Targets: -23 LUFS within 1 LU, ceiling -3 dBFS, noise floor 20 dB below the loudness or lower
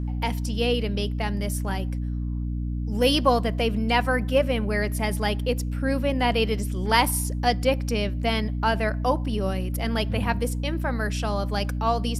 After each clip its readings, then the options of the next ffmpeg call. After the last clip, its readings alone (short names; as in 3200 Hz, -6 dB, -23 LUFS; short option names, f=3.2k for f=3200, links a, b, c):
hum 60 Hz; harmonics up to 300 Hz; hum level -25 dBFS; loudness -25.0 LUFS; peak -5.0 dBFS; loudness target -23.0 LUFS
-> -af "bandreject=f=60:t=h:w=6,bandreject=f=120:t=h:w=6,bandreject=f=180:t=h:w=6,bandreject=f=240:t=h:w=6,bandreject=f=300:t=h:w=6"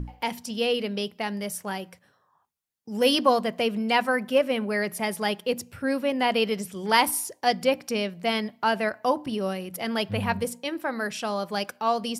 hum none; loudness -26.5 LUFS; peak -5.0 dBFS; loudness target -23.0 LUFS
-> -af "volume=3.5dB,alimiter=limit=-3dB:level=0:latency=1"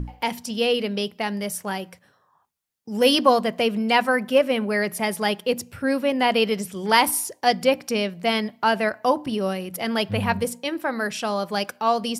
loudness -23.0 LUFS; peak -3.0 dBFS; noise floor -64 dBFS